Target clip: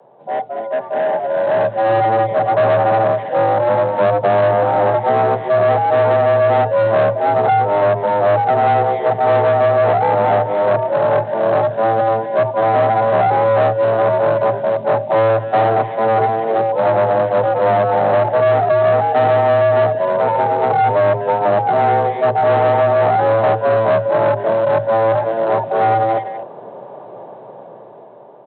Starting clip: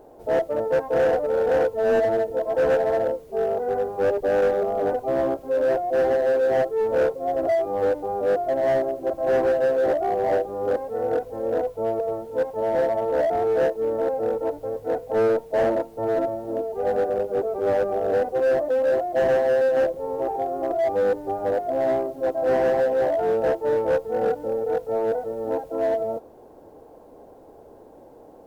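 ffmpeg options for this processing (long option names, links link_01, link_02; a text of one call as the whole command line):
ffmpeg -i in.wav -filter_complex "[0:a]asplit=2[link_01][link_02];[link_02]adelay=250,highpass=300,lowpass=3400,asoftclip=type=hard:threshold=-25dB,volume=-12dB[link_03];[link_01][link_03]amix=inputs=2:normalize=0,dynaudnorm=framelen=530:gausssize=7:maxgain=16.5dB,aresample=8000,aeval=exprs='clip(val(0),-1,0.224)':channel_layout=same,aresample=44100,acrossover=split=98|240|600|1300[link_04][link_05][link_06][link_07][link_08];[link_04]acompressor=threshold=-27dB:ratio=4[link_09];[link_05]acompressor=threshold=-32dB:ratio=4[link_10];[link_06]acompressor=threshold=-16dB:ratio=4[link_11];[link_07]acompressor=threshold=-18dB:ratio=4[link_12];[link_08]acompressor=threshold=-33dB:ratio=4[link_13];[link_09][link_10][link_11][link_12][link_13]amix=inputs=5:normalize=0,afreqshift=110" out.wav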